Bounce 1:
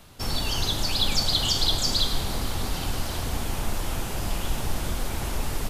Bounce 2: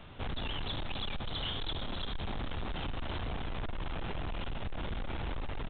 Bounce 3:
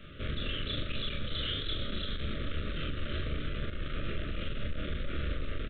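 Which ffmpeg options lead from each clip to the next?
-af "acompressor=threshold=0.0501:ratio=3,aresample=8000,asoftclip=type=tanh:threshold=0.0211,aresample=44100,volume=1.12"
-filter_complex "[0:a]asuperstop=centerf=860:order=12:qfactor=1.6,asplit=2[s0][s1];[s1]aecho=0:1:27|41:0.562|0.708[s2];[s0][s2]amix=inputs=2:normalize=0"

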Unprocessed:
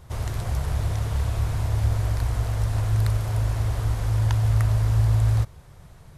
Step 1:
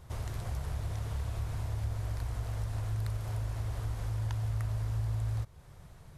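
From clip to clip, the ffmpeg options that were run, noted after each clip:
-af "acompressor=threshold=0.0282:ratio=2,volume=0.562"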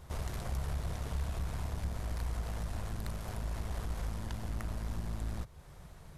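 -af "aeval=exprs='(tanh(25.1*val(0)+0.45)-tanh(0.45))/25.1':c=same,equalizer=f=110:w=5.8:g=-14,volume=1.5"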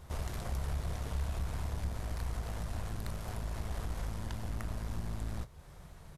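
-filter_complex "[0:a]asplit=2[s0][s1];[s1]adelay=26,volume=0.211[s2];[s0][s2]amix=inputs=2:normalize=0"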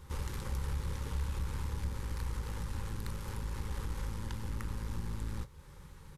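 -af "asuperstop=centerf=670:order=12:qfactor=3.3"

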